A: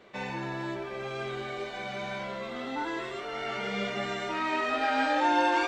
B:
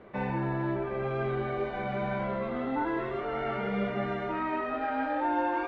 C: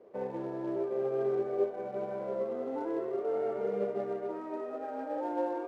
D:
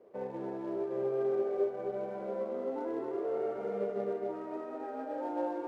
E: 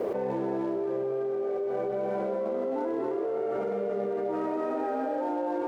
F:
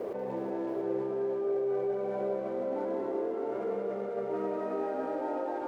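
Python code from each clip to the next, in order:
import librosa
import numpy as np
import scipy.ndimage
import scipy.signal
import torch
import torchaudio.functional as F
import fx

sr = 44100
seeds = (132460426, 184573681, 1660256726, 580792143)

y1 = scipy.signal.sosfilt(scipy.signal.butter(2, 1600.0, 'lowpass', fs=sr, output='sos'), x)
y1 = fx.low_shelf(y1, sr, hz=180.0, db=8.5)
y1 = fx.rider(y1, sr, range_db=4, speed_s=0.5)
y2 = fx.quant_companded(y1, sr, bits=4)
y2 = fx.bandpass_q(y2, sr, hz=460.0, q=3.1)
y2 = fx.upward_expand(y2, sr, threshold_db=-45.0, expansion=1.5)
y2 = F.gain(torch.from_numpy(y2), 7.0).numpy()
y3 = y2 + 10.0 ** (-5.5 / 20.0) * np.pad(y2, (int(261 * sr / 1000.0), 0))[:len(y2)]
y3 = F.gain(torch.from_numpy(y3), -2.5).numpy()
y4 = fx.env_flatten(y3, sr, amount_pct=100)
y4 = F.gain(torch.from_numpy(y4), -3.5).numpy()
y5 = fx.echo_multitap(y4, sr, ms=(186, 369, 685), db=(-7.5, -6.0, -5.0))
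y5 = F.gain(torch.from_numpy(y5), -6.0).numpy()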